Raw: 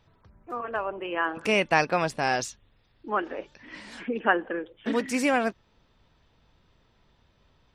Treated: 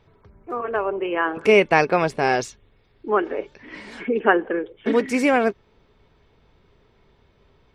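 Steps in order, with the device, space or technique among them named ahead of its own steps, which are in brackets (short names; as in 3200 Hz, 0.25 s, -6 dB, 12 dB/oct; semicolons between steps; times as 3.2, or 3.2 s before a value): inside a helmet (high shelf 3600 Hz -7.5 dB; small resonant body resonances 410/2200 Hz, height 10 dB, ringing for 45 ms); gain +5 dB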